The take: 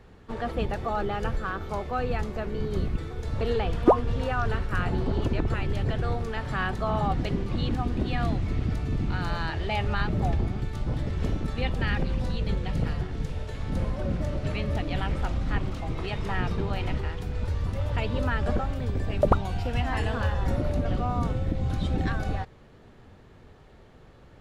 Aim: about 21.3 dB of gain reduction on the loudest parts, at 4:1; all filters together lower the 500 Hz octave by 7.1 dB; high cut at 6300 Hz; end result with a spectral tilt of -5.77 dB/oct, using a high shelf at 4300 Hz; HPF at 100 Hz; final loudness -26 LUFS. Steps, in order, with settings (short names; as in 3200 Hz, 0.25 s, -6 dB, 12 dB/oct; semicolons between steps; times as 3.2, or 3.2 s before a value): HPF 100 Hz; LPF 6300 Hz; bell 500 Hz -9 dB; high shelf 4300 Hz -7.5 dB; compressor 4:1, threshold -46 dBFS; gain +21.5 dB